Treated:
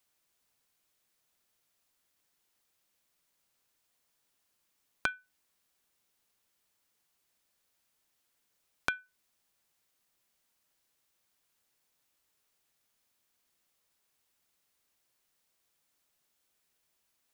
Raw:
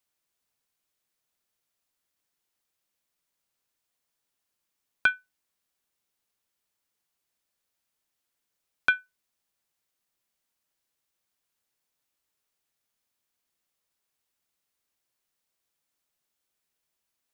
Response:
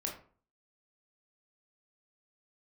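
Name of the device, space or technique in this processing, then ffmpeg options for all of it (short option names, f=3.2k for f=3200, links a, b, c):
serial compression, peaks first: -af "acompressor=threshold=-31dB:ratio=5,acompressor=threshold=-37dB:ratio=1.5,volume=4.5dB"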